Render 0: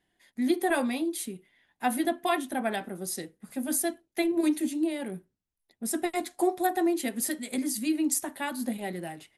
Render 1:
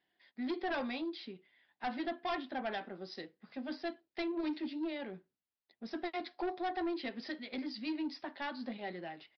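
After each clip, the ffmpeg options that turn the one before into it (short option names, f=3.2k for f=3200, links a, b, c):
-af "highpass=f=410:p=1,aresample=11025,asoftclip=type=tanh:threshold=-27.5dB,aresample=44100,volume=-3.5dB"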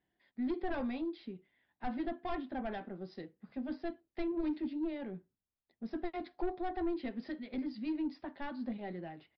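-af "aemphasis=mode=reproduction:type=riaa,volume=-3.5dB"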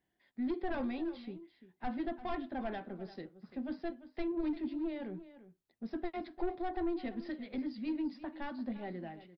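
-af "aecho=1:1:344:0.178"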